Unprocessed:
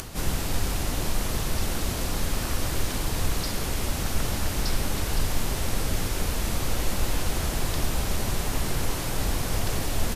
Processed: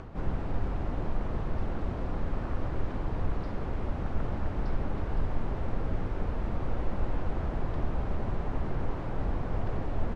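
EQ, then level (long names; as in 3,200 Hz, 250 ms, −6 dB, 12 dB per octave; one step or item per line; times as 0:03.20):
low-pass filter 1,200 Hz 12 dB per octave
−3.5 dB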